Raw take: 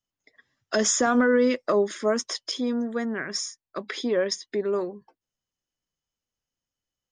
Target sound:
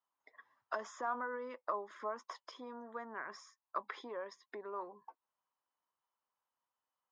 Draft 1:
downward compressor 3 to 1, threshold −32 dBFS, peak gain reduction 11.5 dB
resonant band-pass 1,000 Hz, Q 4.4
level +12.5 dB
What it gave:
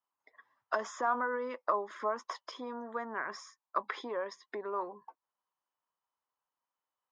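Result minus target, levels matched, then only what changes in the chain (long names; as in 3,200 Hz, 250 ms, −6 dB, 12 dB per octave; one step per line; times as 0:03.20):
downward compressor: peak gain reduction −7 dB
change: downward compressor 3 to 1, threshold −42.5 dBFS, peak gain reduction 18.5 dB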